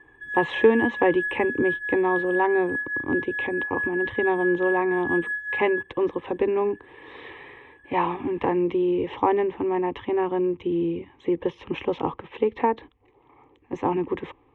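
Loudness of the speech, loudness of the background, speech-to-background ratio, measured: −25.0 LKFS, −28.5 LKFS, 3.5 dB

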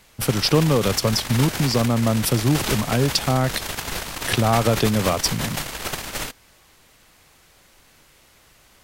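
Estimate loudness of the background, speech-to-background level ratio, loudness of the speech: −28.0 LKFS, 7.0 dB, −21.0 LKFS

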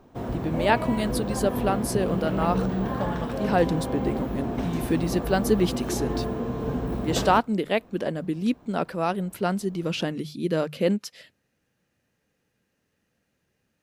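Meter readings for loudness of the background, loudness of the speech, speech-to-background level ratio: −29.5 LKFS, −27.0 LKFS, 2.5 dB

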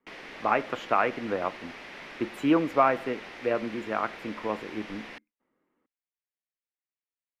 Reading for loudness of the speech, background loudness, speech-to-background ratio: −28.5 LKFS, −42.5 LKFS, 14.0 dB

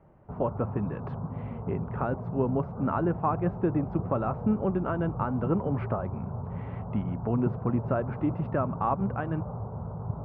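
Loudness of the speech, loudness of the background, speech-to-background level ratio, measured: −30.5 LKFS, −36.5 LKFS, 6.0 dB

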